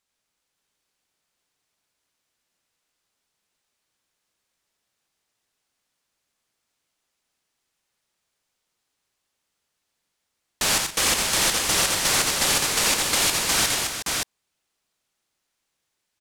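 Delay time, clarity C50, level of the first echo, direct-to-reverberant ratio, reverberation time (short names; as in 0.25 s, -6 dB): 86 ms, none, -4.5 dB, none, none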